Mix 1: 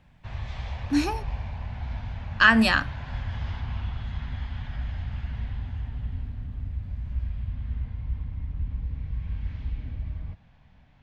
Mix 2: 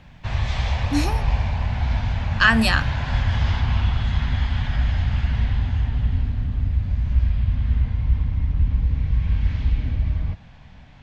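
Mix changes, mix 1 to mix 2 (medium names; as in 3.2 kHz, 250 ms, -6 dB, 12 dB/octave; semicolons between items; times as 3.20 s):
background +11.0 dB; master: add treble shelf 4.7 kHz +7.5 dB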